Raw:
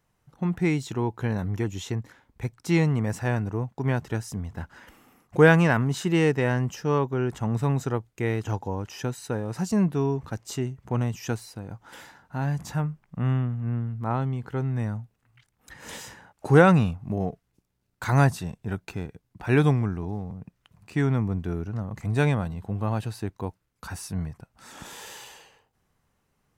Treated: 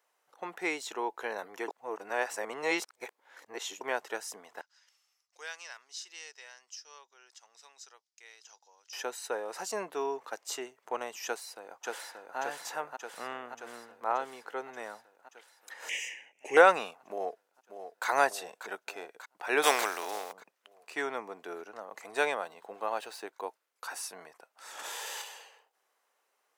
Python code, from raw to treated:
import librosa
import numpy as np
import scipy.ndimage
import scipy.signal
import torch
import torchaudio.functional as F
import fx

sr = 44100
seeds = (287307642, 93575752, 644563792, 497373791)

y = fx.bandpass_q(x, sr, hz=5300.0, q=3.5, at=(4.61, 8.93))
y = fx.echo_throw(y, sr, start_s=11.25, length_s=1.13, ms=580, feedback_pct=70, wet_db=-3.0)
y = fx.curve_eq(y, sr, hz=(260.0, 400.0, 870.0, 1400.0, 2000.0, 2800.0, 4100.0, 6100.0, 11000.0), db=(0, -4, -13, -23, 12, 14, -18, 4, -10), at=(15.89, 16.57))
y = fx.echo_throw(y, sr, start_s=17.1, length_s=0.97, ms=590, feedback_pct=65, wet_db=-9.5)
y = fx.spec_flatten(y, sr, power=0.54, at=(19.62, 20.31), fade=0.02)
y = fx.median_filter(y, sr, points=3, at=(22.45, 23.24))
y = fx.env_flatten(y, sr, amount_pct=100, at=(24.79, 25.22))
y = fx.edit(y, sr, fx.reverse_span(start_s=1.68, length_s=2.13), tone=tone)
y = scipy.signal.sosfilt(scipy.signal.butter(4, 470.0, 'highpass', fs=sr, output='sos'), y)